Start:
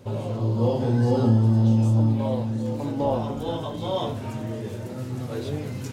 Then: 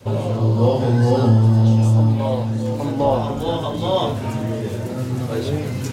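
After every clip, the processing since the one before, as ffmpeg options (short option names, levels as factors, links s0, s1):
-af "adynamicequalizer=threshold=0.0282:dfrequency=240:dqfactor=0.71:tfrequency=240:tqfactor=0.71:attack=5:release=100:ratio=0.375:range=3:mode=cutabove:tftype=bell,volume=2.51"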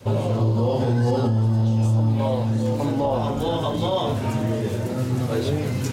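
-af "alimiter=limit=0.224:level=0:latency=1:release=94"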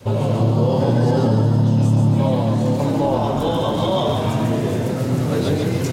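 -filter_complex "[0:a]asplit=8[s0][s1][s2][s3][s4][s5][s6][s7];[s1]adelay=142,afreqshift=35,volume=0.631[s8];[s2]adelay=284,afreqshift=70,volume=0.327[s9];[s3]adelay=426,afreqshift=105,volume=0.17[s10];[s4]adelay=568,afreqshift=140,volume=0.0891[s11];[s5]adelay=710,afreqshift=175,volume=0.0462[s12];[s6]adelay=852,afreqshift=210,volume=0.024[s13];[s7]adelay=994,afreqshift=245,volume=0.0124[s14];[s0][s8][s9][s10][s11][s12][s13][s14]amix=inputs=8:normalize=0,volume=1.26"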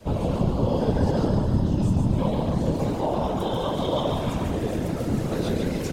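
-af "afftfilt=real='hypot(re,im)*cos(2*PI*random(0))':imag='hypot(re,im)*sin(2*PI*random(1))':win_size=512:overlap=0.75"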